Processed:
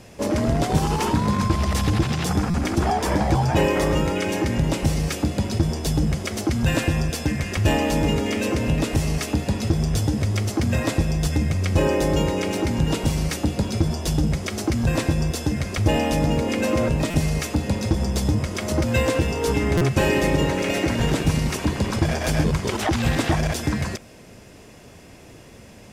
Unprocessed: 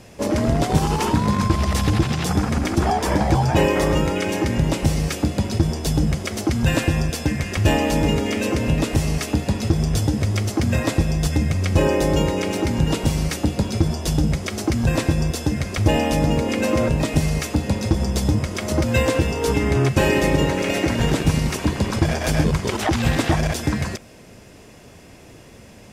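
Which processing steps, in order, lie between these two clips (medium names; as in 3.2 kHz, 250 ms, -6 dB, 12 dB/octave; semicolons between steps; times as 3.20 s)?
in parallel at -10 dB: overload inside the chain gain 22 dB; on the sum: buffer glitch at 2.50/17.10/19.77 s, samples 256, times 6; trim -3 dB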